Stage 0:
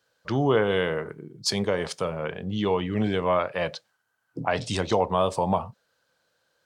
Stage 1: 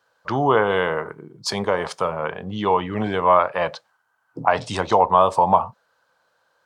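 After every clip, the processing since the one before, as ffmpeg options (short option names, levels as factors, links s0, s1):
-af "equalizer=f=990:w=0.96:g=13,volume=0.891"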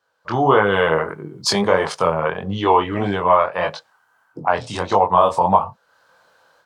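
-af "flanger=delay=20:depth=5.1:speed=1.6,dynaudnorm=f=200:g=3:m=5.01,volume=0.891"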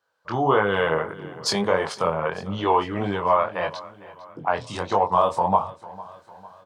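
-af "aecho=1:1:452|904|1356|1808:0.112|0.055|0.0269|0.0132,volume=0.562"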